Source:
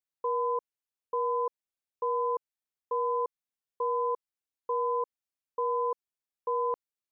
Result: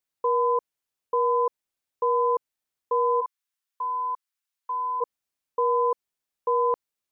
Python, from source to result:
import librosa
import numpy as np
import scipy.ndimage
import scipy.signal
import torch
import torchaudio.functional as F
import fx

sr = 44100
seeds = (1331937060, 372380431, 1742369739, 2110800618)

y = fx.highpass(x, sr, hz=990.0, slope=24, at=(3.2, 5.0), fade=0.02)
y = y * librosa.db_to_amplitude(6.5)